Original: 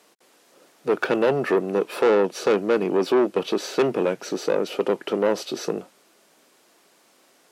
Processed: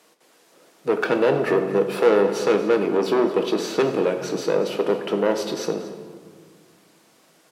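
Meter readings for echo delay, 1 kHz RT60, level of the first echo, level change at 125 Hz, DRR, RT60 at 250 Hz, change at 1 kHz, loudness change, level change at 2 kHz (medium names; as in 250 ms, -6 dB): 232 ms, 1.7 s, -16.0 dB, +2.5 dB, 5.0 dB, 2.8 s, +1.0 dB, +1.5 dB, +1.0 dB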